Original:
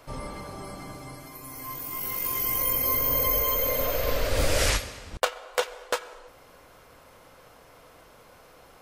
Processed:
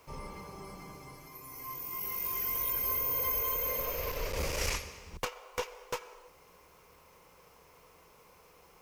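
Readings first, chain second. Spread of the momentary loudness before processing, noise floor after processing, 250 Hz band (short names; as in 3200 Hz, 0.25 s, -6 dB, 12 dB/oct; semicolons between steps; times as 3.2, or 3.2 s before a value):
18 LU, -60 dBFS, -9.5 dB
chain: ripple EQ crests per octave 0.79, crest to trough 8 dB; one-sided clip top -25 dBFS; added noise white -62 dBFS; gain -8 dB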